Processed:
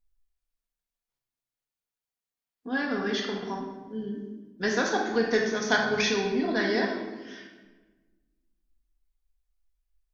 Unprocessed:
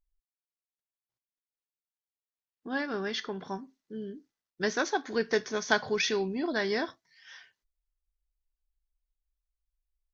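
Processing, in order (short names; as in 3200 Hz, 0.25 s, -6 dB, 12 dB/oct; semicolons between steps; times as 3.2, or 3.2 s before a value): shoebox room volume 910 m³, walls mixed, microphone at 1.8 m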